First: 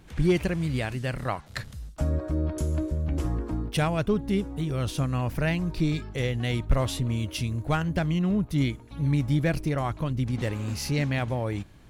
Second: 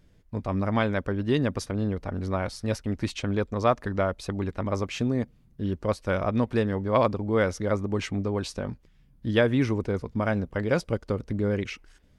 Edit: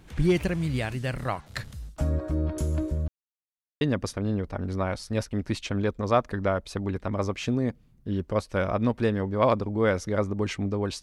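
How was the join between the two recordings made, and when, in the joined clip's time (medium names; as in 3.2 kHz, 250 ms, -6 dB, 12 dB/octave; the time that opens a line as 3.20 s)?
first
3.08–3.81 s: mute
3.81 s: go over to second from 1.34 s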